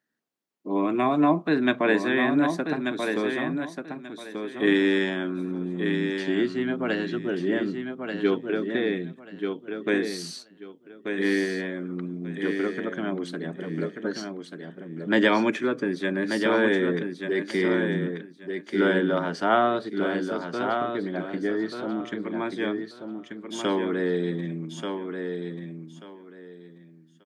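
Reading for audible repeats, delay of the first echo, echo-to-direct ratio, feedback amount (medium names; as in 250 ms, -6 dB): 3, 1186 ms, -6.0 dB, 21%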